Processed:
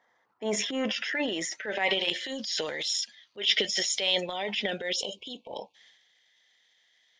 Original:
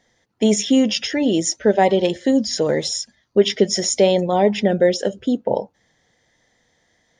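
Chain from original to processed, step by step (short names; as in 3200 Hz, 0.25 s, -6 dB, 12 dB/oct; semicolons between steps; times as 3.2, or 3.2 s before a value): band-pass sweep 1100 Hz -> 3100 Hz, 0.48–2.29; transient shaper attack -9 dB, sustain +9 dB; spectral delete 4.96–5.75, 1100–2200 Hz; gain +5 dB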